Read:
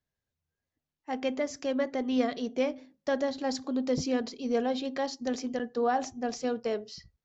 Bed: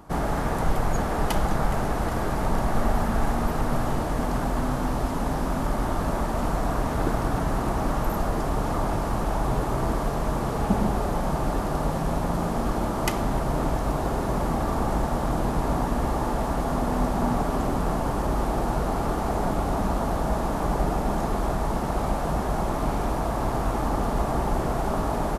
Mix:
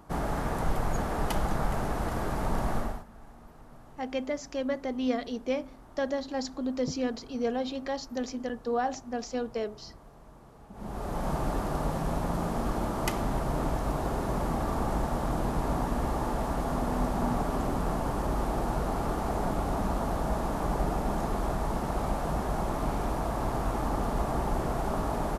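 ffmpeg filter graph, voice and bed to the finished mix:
ffmpeg -i stem1.wav -i stem2.wav -filter_complex "[0:a]adelay=2900,volume=-1.5dB[link_01];[1:a]volume=17dB,afade=type=out:start_time=2.72:duration=0.32:silence=0.0841395,afade=type=in:start_time=10.73:duration=0.57:silence=0.0794328[link_02];[link_01][link_02]amix=inputs=2:normalize=0" out.wav

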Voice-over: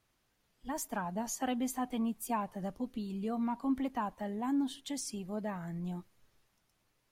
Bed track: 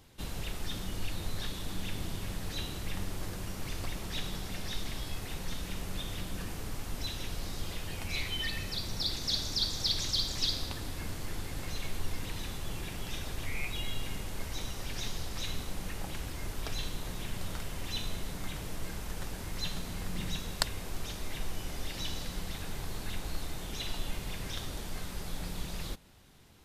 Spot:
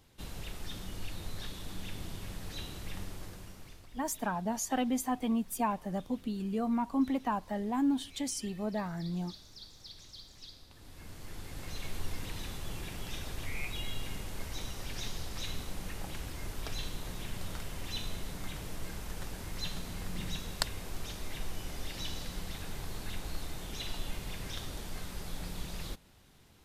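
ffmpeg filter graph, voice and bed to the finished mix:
ffmpeg -i stem1.wav -i stem2.wav -filter_complex "[0:a]adelay=3300,volume=3dB[link_01];[1:a]volume=13dB,afade=type=out:start_time=2.99:duration=0.88:silence=0.177828,afade=type=in:start_time=10.69:duration=1.29:silence=0.133352[link_02];[link_01][link_02]amix=inputs=2:normalize=0" out.wav

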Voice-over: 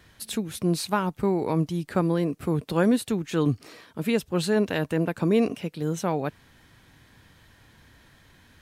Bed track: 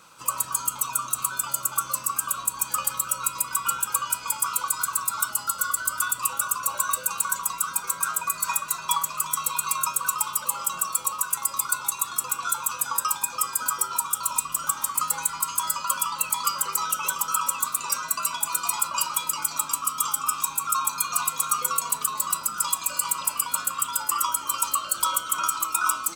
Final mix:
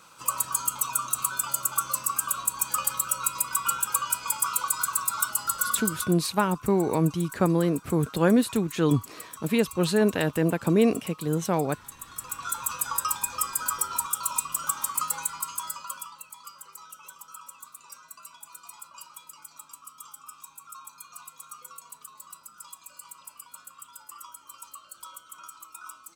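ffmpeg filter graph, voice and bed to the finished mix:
ffmpeg -i stem1.wav -i stem2.wav -filter_complex "[0:a]adelay=5450,volume=1dB[link_01];[1:a]volume=13.5dB,afade=type=out:start_time=5.79:duration=0.36:silence=0.158489,afade=type=in:start_time=12:duration=0.74:silence=0.188365,afade=type=out:start_time=14.94:duration=1.31:silence=0.133352[link_02];[link_01][link_02]amix=inputs=2:normalize=0" out.wav

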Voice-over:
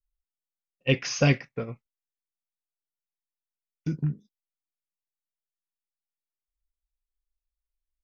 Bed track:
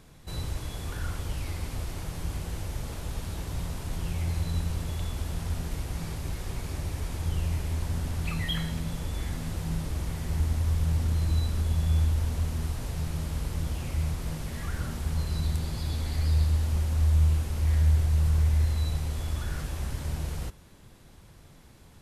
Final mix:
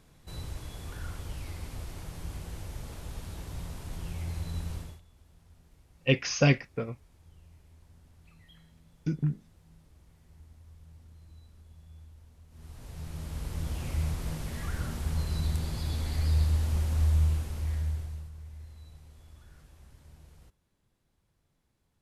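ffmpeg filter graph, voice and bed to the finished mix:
ffmpeg -i stem1.wav -i stem2.wav -filter_complex "[0:a]adelay=5200,volume=-1dB[link_01];[1:a]volume=19.5dB,afade=type=out:start_time=4.75:duration=0.26:silence=0.0891251,afade=type=in:start_time=12.49:duration=1.41:silence=0.0530884,afade=type=out:start_time=17.02:duration=1.28:silence=0.0944061[link_02];[link_01][link_02]amix=inputs=2:normalize=0" out.wav

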